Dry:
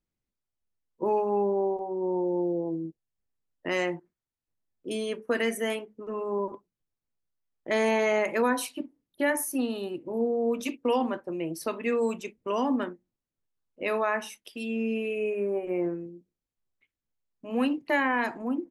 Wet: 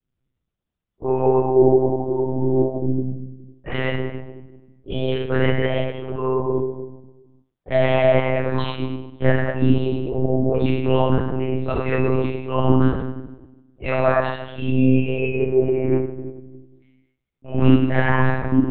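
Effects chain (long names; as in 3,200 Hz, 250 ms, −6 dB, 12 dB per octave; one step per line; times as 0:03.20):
0:08.19–0:08.69: compressor whose output falls as the input rises −31 dBFS, ratio −1
convolution reverb RT60 1.1 s, pre-delay 3 ms, DRR −14 dB
one-pitch LPC vocoder at 8 kHz 130 Hz
level −5.5 dB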